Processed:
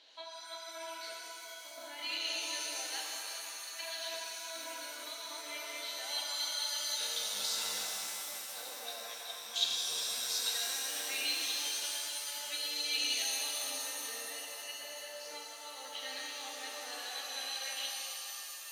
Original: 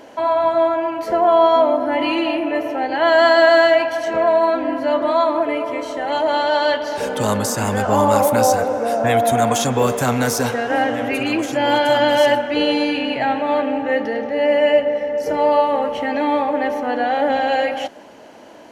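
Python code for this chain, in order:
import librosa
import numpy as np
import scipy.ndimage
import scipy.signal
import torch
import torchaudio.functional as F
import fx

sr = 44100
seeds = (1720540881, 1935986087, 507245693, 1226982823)

y = fx.over_compress(x, sr, threshold_db=-20.0, ratio=-0.5)
y = fx.bandpass_q(y, sr, hz=3900.0, q=8.3)
y = fx.rev_shimmer(y, sr, seeds[0], rt60_s=3.0, semitones=7, shimmer_db=-2, drr_db=-1.5)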